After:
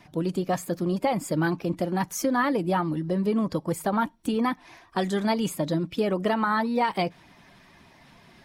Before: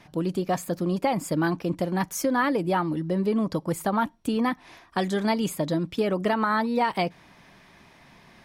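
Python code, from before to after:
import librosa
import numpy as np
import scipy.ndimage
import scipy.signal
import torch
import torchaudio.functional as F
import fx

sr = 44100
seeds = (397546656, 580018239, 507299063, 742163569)

y = fx.spec_quant(x, sr, step_db=15)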